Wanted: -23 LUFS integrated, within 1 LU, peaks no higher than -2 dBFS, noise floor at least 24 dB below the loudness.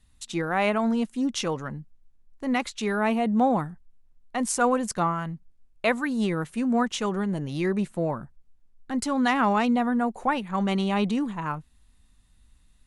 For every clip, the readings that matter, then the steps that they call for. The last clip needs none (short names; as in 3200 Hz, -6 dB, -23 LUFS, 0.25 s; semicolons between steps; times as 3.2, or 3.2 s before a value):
loudness -26.0 LUFS; peak -10.0 dBFS; loudness target -23.0 LUFS
-> gain +3 dB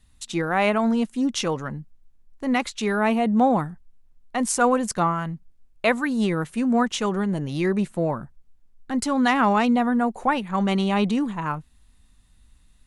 loudness -23.0 LUFS; peak -7.0 dBFS; noise floor -57 dBFS